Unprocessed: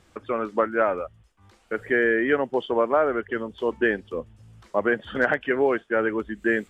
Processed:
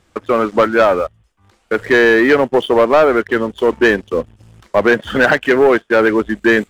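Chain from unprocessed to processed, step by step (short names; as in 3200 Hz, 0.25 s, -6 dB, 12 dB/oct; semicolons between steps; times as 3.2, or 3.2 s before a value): sample leveller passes 2; gain +5.5 dB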